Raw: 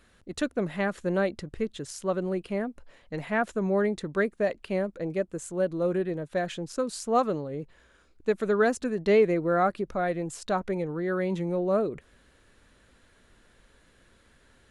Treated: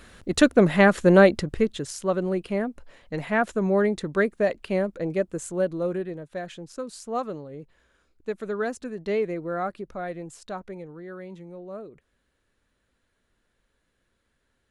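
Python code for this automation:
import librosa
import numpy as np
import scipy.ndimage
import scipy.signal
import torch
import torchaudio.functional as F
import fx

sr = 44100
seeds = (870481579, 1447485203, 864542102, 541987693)

y = fx.gain(x, sr, db=fx.line((1.28, 11.5), (1.98, 3.5), (5.5, 3.5), (6.28, -5.0), (10.18, -5.0), (11.47, -13.0)))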